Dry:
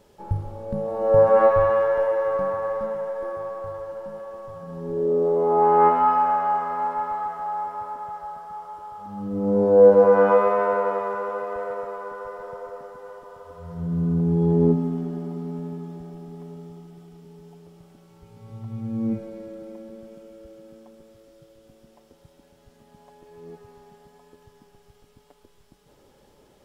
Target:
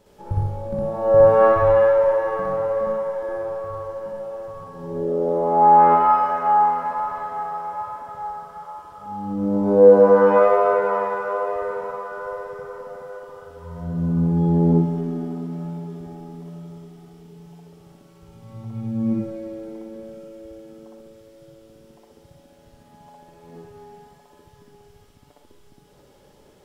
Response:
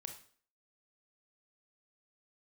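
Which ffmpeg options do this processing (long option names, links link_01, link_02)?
-filter_complex "[0:a]asplit=2[link_01][link_02];[1:a]atrim=start_sample=2205,atrim=end_sample=3528,adelay=61[link_03];[link_02][link_03]afir=irnorm=-1:irlink=0,volume=7dB[link_04];[link_01][link_04]amix=inputs=2:normalize=0,volume=-1.5dB"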